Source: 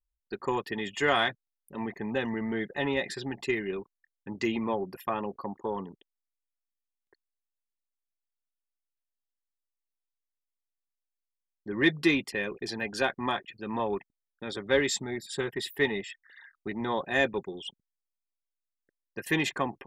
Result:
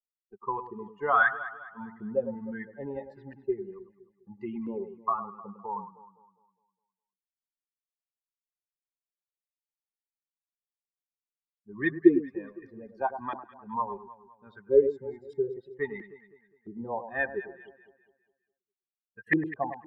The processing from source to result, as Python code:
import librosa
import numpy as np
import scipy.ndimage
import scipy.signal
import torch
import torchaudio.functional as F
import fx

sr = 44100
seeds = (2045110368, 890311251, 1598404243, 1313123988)

y = fx.bin_expand(x, sr, power=2.0)
y = fx.filter_lfo_lowpass(y, sr, shape='saw_up', hz=1.5, low_hz=320.0, high_hz=2000.0, q=7.1)
y = fx.echo_alternate(y, sr, ms=102, hz=1300.0, feedback_pct=62, wet_db=-10.0)
y = y * librosa.db_to_amplitude(-2.5)